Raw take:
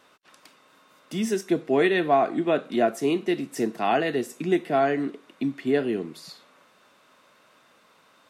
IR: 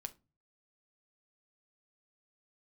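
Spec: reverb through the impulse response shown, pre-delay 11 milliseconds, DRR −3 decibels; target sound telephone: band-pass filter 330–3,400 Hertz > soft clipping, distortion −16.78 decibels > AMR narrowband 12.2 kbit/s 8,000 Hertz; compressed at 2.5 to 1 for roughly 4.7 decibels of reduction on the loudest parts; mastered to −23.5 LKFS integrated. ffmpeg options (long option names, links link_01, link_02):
-filter_complex "[0:a]acompressor=threshold=-23dB:ratio=2.5,asplit=2[link_01][link_02];[1:a]atrim=start_sample=2205,adelay=11[link_03];[link_02][link_03]afir=irnorm=-1:irlink=0,volume=6.5dB[link_04];[link_01][link_04]amix=inputs=2:normalize=0,highpass=330,lowpass=3400,asoftclip=threshold=-16.5dB,volume=4dB" -ar 8000 -c:a libopencore_amrnb -b:a 12200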